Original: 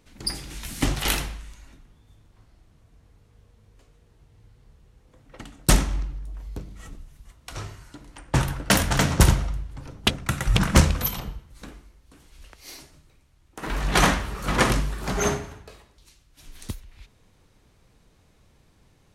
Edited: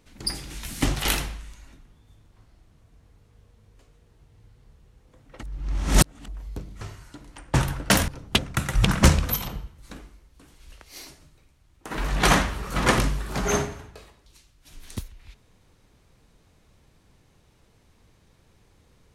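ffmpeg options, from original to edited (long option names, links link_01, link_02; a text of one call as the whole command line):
ffmpeg -i in.wav -filter_complex "[0:a]asplit=5[link_01][link_02][link_03][link_04][link_05];[link_01]atrim=end=5.432[link_06];[link_02]atrim=start=5.428:end=6.282,asetpts=PTS-STARTPTS,areverse[link_07];[link_03]atrim=start=6.278:end=6.812[link_08];[link_04]atrim=start=7.608:end=8.882[link_09];[link_05]atrim=start=9.798[link_10];[link_06][link_07]acrossfade=duration=0.004:curve1=hsin:curve2=hsin[link_11];[link_11][link_08]acrossfade=duration=0.004:curve1=hsin:curve2=hsin[link_12];[link_12][link_09]acrossfade=duration=0.004:curve1=hsin:curve2=hsin[link_13];[link_13][link_10]acrossfade=duration=0.004:curve1=hsin:curve2=hsin" out.wav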